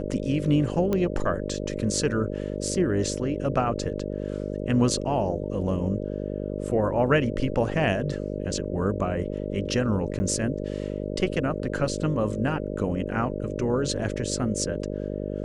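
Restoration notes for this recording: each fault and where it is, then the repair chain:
buzz 50 Hz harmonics 12 -31 dBFS
0.93 pop -14 dBFS
10.19–10.2 gap 10 ms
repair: de-click; de-hum 50 Hz, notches 12; interpolate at 10.19, 10 ms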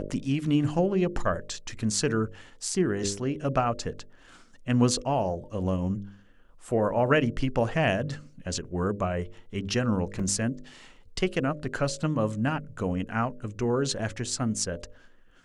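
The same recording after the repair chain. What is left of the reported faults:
none

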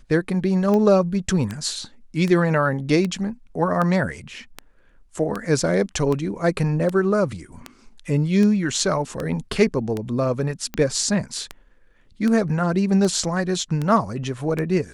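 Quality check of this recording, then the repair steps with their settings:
tick 78 rpm -13 dBFS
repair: de-click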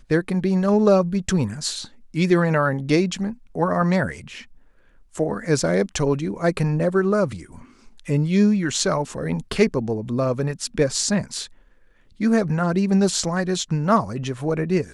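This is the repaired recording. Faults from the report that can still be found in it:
none

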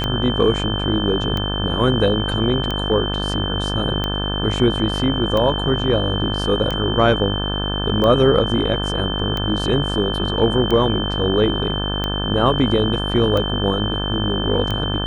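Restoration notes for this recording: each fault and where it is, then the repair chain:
buzz 50 Hz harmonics 35 -24 dBFS
tick 45 rpm -10 dBFS
tone 3100 Hz -25 dBFS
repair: de-click; notch 3100 Hz, Q 30; de-hum 50 Hz, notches 35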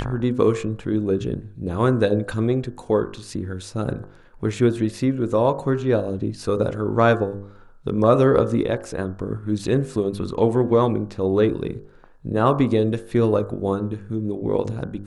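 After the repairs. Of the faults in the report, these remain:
none

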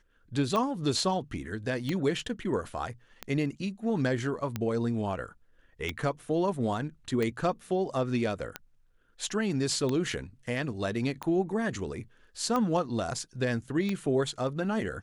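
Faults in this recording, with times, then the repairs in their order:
tick 45 rpm -17 dBFS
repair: de-click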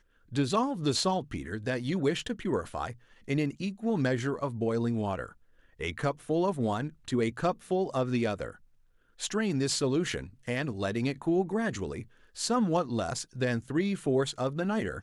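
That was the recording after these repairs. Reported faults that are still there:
none

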